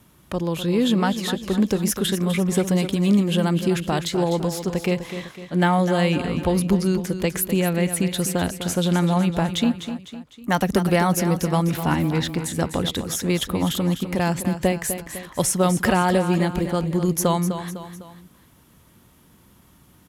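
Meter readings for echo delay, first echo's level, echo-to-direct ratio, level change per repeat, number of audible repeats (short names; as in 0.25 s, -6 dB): 0.252 s, -10.0 dB, -9.0 dB, -6.5 dB, 3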